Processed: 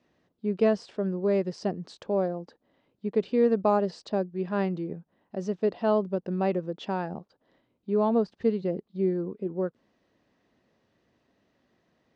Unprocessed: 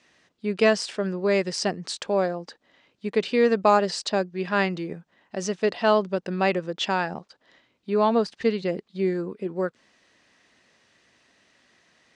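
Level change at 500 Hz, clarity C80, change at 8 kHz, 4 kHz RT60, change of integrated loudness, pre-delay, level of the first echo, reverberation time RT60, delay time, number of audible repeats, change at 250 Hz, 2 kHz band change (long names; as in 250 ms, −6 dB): −3.0 dB, no reverb audible, below −15 dB, no reverb audible, −3.5 dB, no reverb audible, no echo audible, no reverb audible, no echo audible, no echo audible, −1.0 dB, −14.0 dB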